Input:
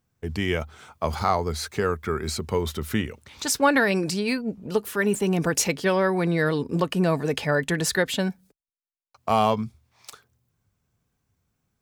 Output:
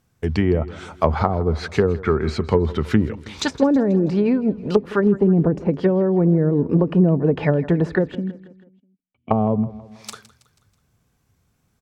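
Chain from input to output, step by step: treble ducked by the level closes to 370 Hz, closed at -19 dBFS; 8.15–9.31 vocal tract filter i; feedback echo 0.162 s, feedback 50%, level -18 dB; gain +8.5 dB

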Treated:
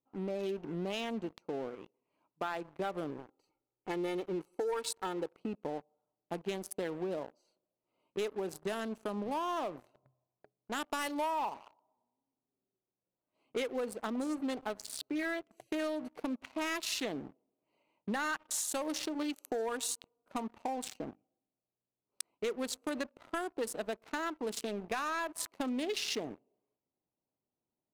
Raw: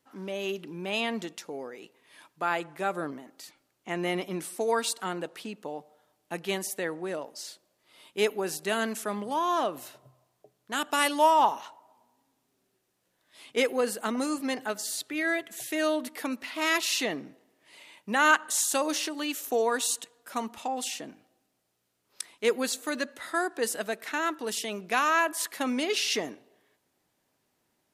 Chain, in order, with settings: Wiener smoothing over 25 samples; 3.1–5.34 comb 2.3 ms, depth 59%; sample leveller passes 2; compressor 8:1, threshold -28 dBFS, peak gain reduction 14.5 dB; sample leveller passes 1; gain -8 dB

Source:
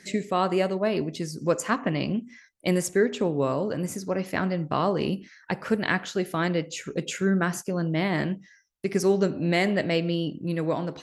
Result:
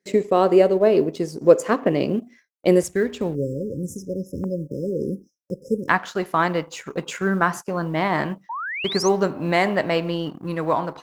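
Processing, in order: G.711 law mismatch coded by A; 3.35–5.89 spectral delete 570–5000 Hz; bell 450 Hz +13.5 dB 1.3 oct, from 2.83 s 68 Hz, from 4.44 s 1000 Hz; gate with hold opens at -41 dBFS; 8.49–9.09 painted sound rise 860–6700 Hz -29 dBFS

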